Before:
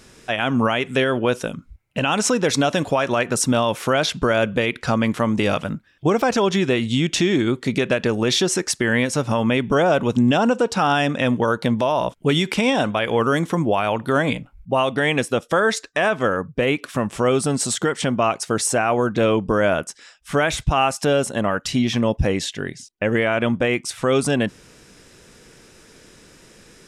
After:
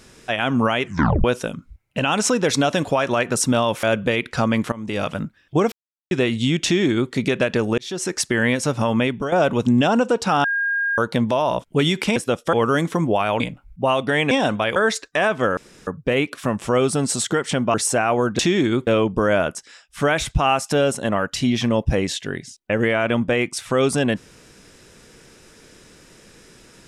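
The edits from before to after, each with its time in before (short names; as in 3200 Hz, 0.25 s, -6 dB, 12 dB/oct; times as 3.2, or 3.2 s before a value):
0.84 tape stop 0.40 s
3.83–4.33 cut
5.22–5.68 fade in, from -19.5 dB
6.22–6.61 mute
7.14–7.62 copy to 19.19
8.28–8.7 fade in linear
9.51–9.82 fade out, to -11.5 dB
10.94–11.48 bleep 1620 Hz -18.5 dBFS
12.66–13.11 swap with 15.2–15.57
13.98–14.29 cut
16.38 insert room tone 0.30 s
18.25–18.54 cut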